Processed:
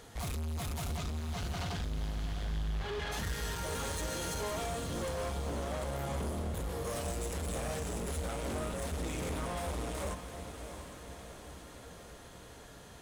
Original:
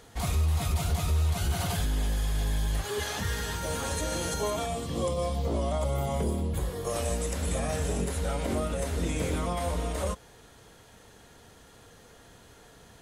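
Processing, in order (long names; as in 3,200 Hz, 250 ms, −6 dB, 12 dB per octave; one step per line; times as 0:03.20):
0:00.96–0:03.11: low-pass filter 7,700 Hz → 3,500 Hz 24 dB per octave
soft clipping −34.5 dBFS, distortion −7 dB
feedback delay with all-pass diffusion 711 ms, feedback 59%, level −9 dB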